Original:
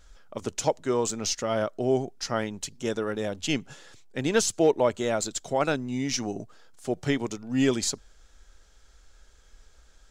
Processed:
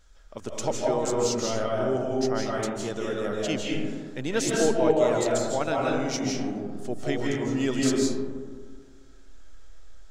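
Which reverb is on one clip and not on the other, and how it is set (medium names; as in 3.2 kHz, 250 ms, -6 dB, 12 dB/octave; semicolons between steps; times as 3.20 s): algorithmic reverb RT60 1.7 s, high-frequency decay 0.3×, pre-delay 120 ms, DRR -3 dB; trim -4 dB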